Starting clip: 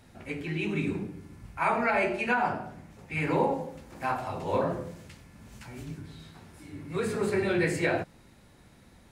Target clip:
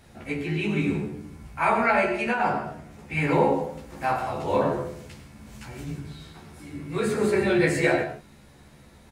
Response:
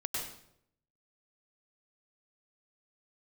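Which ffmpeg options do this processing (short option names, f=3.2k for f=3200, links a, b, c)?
-filter_complex "[0:a]asettb=1/sr,asplit=3[a][b][c];[a]atrim=end=2.004[d];[b]atrim=start=2:end=2.4,asetpts=PTS-STARTPTS,afade=t=in:d=0.004:c=qsin,afade=t=out:st=0.396:d=0.004:c=qsin,acompressor=threshold=-28dB:ratio=2[e];[c]atrim=start=2.396[f];[d][e]acrossfade=d=0.004:c1=hsin:c2=qsin[g];[g][f]acrossfade=d=0.004:c1=qsin:c2=hsin,asplit=2[h][i];[i]adelay=14,volume=-2.5dB[j];[h][j]amix=inputs=2:normalize=0,asplit=2[k][l];[1:a]atrim=start_sample=2205,afade=t=out:st=0.22:d=0.01,atrim=end_sample=10143[m];[l][m]afir=irnorm=-1:irlink=0,volume=-8.5dB[n];[k][n]amix=inputs=2:normalize=0"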